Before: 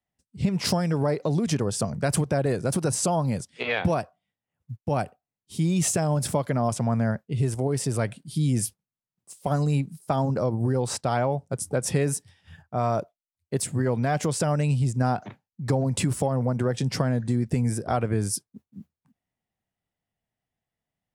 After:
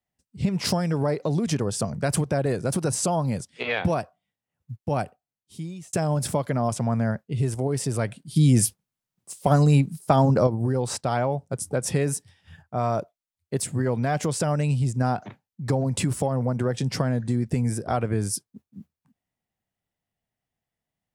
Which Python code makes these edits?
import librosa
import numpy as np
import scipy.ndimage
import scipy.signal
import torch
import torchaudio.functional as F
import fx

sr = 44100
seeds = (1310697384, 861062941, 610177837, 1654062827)

y = fx.edit(x, sr, fx.fade_out_span(start_s=5.01, length_s=0.92),
    fx.clip_gain(start_s=8.36, length_s=2.11, db=6.0), tone=tone)